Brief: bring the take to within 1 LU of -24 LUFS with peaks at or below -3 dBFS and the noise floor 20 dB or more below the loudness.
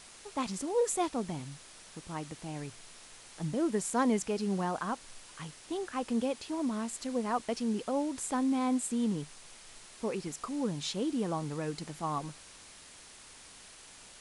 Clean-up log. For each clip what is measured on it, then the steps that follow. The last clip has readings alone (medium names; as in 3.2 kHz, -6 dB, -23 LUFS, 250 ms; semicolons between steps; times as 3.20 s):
noise floor -53 dBFS; noise floor target -54 dBFS; loudness -34.0 LUFS; peak level -17.0 dBFS; loudness target -24.0 LUFS
-> noise print and reduce 6 dB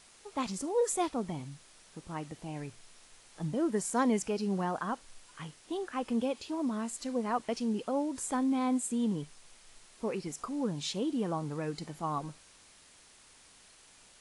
noise floor -59 dBFS; loudness -34.0 LUFS; peak level -17.0 dBFS; loudness target -24.0 LUFS
-> trim +10 dB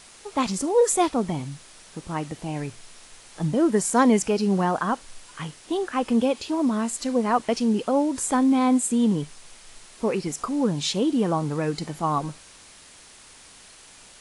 loudness -24.0 LUFS; peak level -7.0 dBFS; noise floor -49 dBFS